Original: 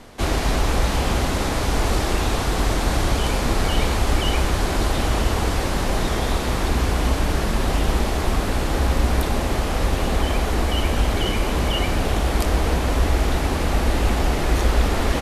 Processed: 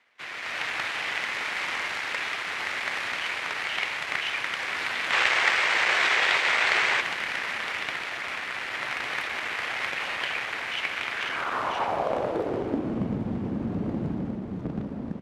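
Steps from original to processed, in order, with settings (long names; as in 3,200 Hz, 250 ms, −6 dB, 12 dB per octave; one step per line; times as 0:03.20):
harmonic generator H 3 −8 dB, 7 −35 dB, 8 −18 dB, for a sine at −5.5 dBFS
automatic gain control gain up to 11.5 dB
band-pass filter sweep 2,100 Hz → 210 Hz, 0:11.10–0:13.06
gain on a spectral selection 0:05.13–0:07.01, 330–8,800 Hz +7 dB
on a send: feedback echo with a high-pass in the loop 436 ms, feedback 70%, level −21.5 dB
on the sum: level −1 dB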